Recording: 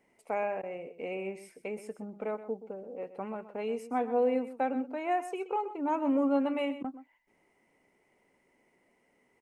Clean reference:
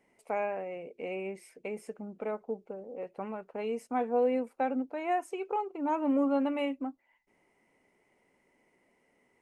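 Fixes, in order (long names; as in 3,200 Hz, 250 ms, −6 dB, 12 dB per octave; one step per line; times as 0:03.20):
repair the gap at 0:00.62/0:06.83, 11 ms
echo removal 126 ms −13.5 dB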